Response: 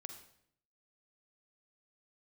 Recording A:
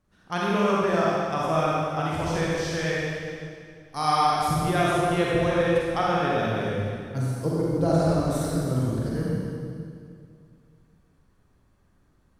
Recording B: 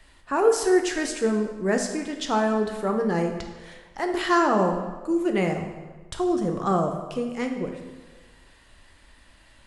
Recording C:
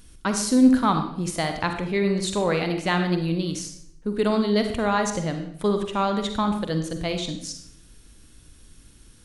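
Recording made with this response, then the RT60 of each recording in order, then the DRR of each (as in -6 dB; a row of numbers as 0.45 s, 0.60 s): C; 2.3 s, 1.3 s, 0.65 s; -6.0 dB, 3.5 dB, 5.5 dB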